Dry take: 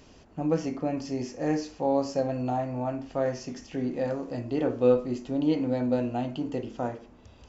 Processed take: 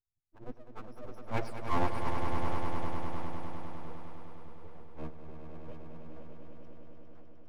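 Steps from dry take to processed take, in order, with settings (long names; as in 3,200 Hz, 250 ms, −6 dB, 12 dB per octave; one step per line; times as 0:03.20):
spectral dynamics exaggerated over time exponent 3
source passing by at 0:01.53, 33 m/s, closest 4.6 metres
bass and treble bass +6 dB, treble −13 dB
phase-vocoder pitch shift with formants kept −6.5 semitones
full-wave rectification
echo that builds up and dies away 101 ms, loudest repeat 5, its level −8 dB
level +9.5 dB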